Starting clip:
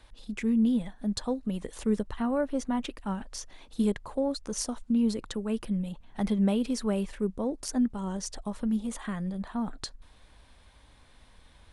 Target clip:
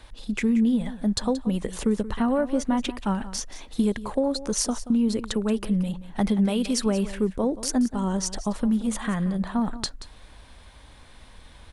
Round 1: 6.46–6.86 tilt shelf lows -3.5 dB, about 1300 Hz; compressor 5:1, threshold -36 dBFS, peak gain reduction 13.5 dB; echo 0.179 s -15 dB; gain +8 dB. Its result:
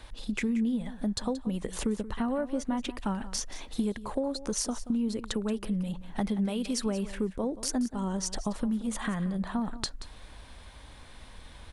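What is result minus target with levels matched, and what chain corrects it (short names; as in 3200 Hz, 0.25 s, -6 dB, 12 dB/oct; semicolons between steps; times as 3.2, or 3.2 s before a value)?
compressor: peak gain reduction +7 dB
6.46–6.86 tilt shelf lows -3.5 dB, about 1300 Hz; compressor 5:1, threshold -27 dBFS, peak gain reduction 6.5 dB; echo 0.179 s -15 dB; gain +8 dB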